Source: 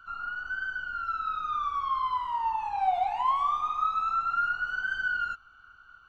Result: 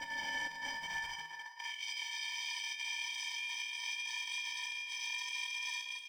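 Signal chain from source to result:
harmonic generator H 4 −33 dB, 7 −35 dB, 8 −13 dB, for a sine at −16 dBFS
extreme stretch with random phases 26×, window 0.50 s, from 0:04.19
on a send: ambience of single reflections 33 ms −9.5 dB, 62 ms −8.5 dB
on the sum: bit reduction 9 bits
high-pass filter sweep 150 Hz → 3,200 Hz, 0:00.71–0:01.84
in parallel at −7 dB: soft clipping −22 dBFS, distortion −15 dB
on the sum: ring modulation 420 Hz
compressor whose output falls as the input rises −29 dBFS, ratio −0.5
floating-point word with a short mantissa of 4 bits
low-shelf EQ 74 Hz +11 dB
tuned comb filter 160 Hz, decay 0.74 s, harmonics odd, mix 80%

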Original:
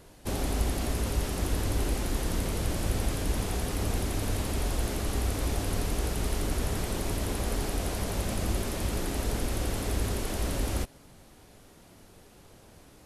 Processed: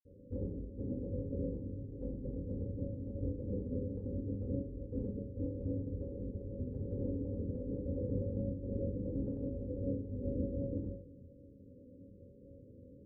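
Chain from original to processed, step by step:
Chebyshev low-pass filter 560 Hz, order 10
compressor whose output falls as the input rises −33 dBFS, ratio −0.5
convolution reverb RT60 0.45 s, pre-delay 46 ms, DRR −60 dB

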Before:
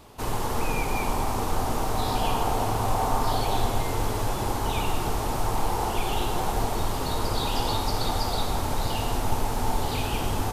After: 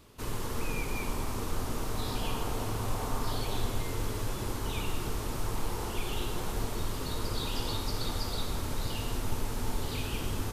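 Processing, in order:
parametric band 780 Hz −11 dB 0.66 octaves
level −5.5 dB

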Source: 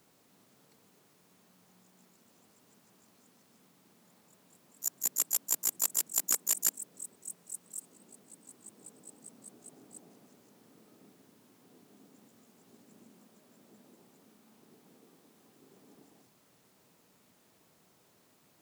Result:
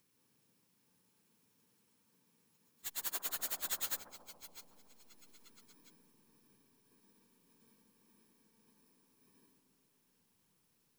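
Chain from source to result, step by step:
samples in bit-reversed order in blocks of 64 samples
in parallel at −7 dB: slack as between gear wheels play −29 dBFS
on the sum: time stretch by phase vocoder 0.59×
bucket-brigade delay 139 ms, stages 1,024, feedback 74%, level −8 dB
level −6.5 dB

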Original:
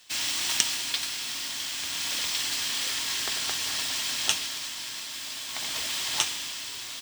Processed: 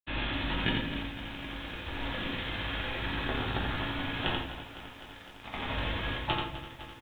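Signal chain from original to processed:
reverb reduction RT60 0.84 s
spectral tilt −4.5 dB per octave
bit-depth reduction 6 bits, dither none
granular cloud 100 ms, grains 20 per second
double-tracking delay 15 ms −13 dB
hollow resonant body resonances 1,700/2,500 Hz, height 7 dB, ringing for 45 ms
on a send: single-tap delay 86 ms −4 dB
on the sum: rectangular room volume 75 cubic metres, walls mixed, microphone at 0.82 metres
downsampling to 8,000 Hz
feedback echo at a low word length 254 ms, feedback 80%, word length 9 bits, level −14 dB

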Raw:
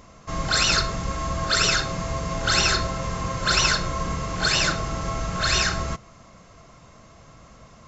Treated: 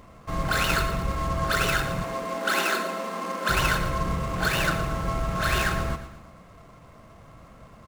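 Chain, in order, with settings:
running median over 9 samples
0:02.04–0:03.49: Butterworth high-pass 190 Hz 96 dB per octave
repeating echo 116 ms, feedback 46%, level −12 dB

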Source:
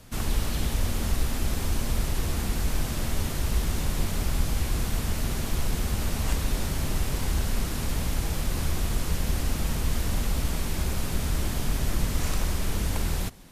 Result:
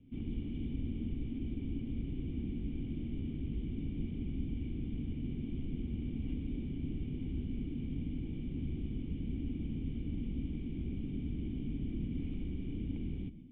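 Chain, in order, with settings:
formant resonators in series i
parametric band 160 Hz +10.5 dB 2.9 octaves
convolution reverb RT60 0.40 s, pre-delay 117 ms, DRR 15.5 dB
level −6.5 dB

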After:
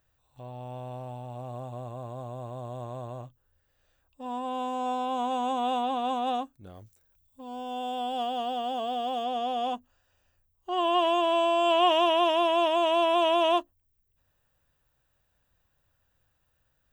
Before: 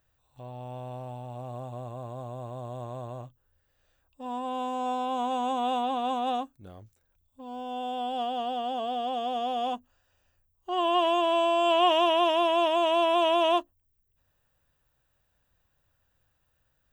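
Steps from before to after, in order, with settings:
0:06.74–0:09.23: high-shelf EQ 4,700 Hz → 8,300 Hz +8 dB

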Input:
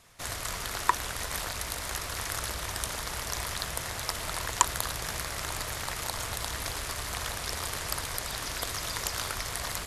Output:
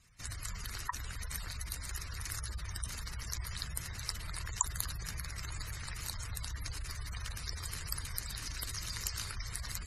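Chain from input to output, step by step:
gate on every frequency bin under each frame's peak −15 dB strong
guitar amp tone stack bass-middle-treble 6-0-2
notch filter 3,400 Hz, Q 6.2
level +12 dB

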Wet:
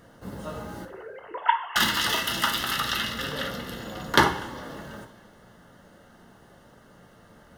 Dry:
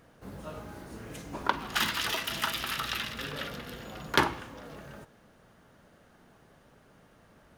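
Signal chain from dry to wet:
0:00.85–0:01.76: three sine waves on the formant tracks
Butterworth band-reject 2,400 Hz, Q 5.7
coupled-rooms reverb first 0.37 s, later 2.3 s, from −18 dB, DRR 4.5 dB
level +5 dB

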